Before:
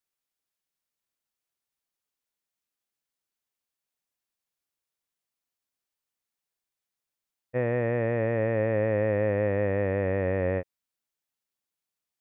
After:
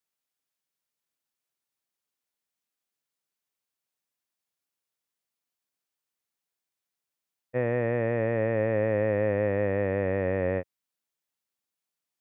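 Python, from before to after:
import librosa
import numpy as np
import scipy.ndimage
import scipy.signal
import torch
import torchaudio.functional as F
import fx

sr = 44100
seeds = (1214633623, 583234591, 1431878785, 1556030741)

y = scipy.signal.sosfilt(scipy.signal.butter(2, 89.0, 'highpass', fs=sr, output='sos'), x)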